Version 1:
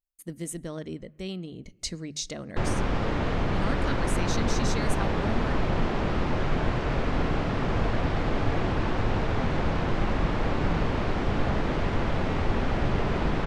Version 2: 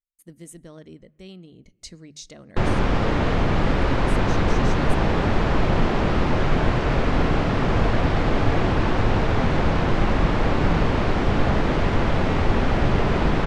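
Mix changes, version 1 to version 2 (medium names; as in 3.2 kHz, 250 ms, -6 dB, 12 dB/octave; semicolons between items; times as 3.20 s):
speech -7.0 dB; background +6.0 dB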